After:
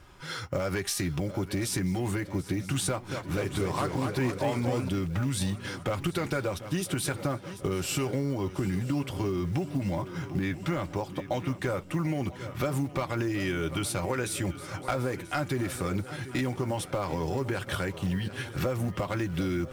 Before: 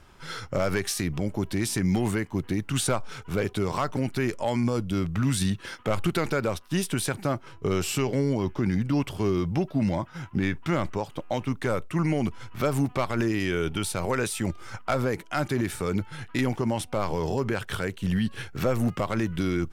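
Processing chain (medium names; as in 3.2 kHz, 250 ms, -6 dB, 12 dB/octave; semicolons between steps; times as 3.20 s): comb of notches 220 Hz; short-mantissa float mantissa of 4-bit; shuffle delay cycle 986 ms, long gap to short 3:1, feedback 47%, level -17 dB; compression, threshold -27 dBFS, peak gain reduction 7.5 dB; 2.88–4.89 s: modulated delay 236 ms, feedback 55%, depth 150 cents, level -5.5 dB; trim +1.5 dB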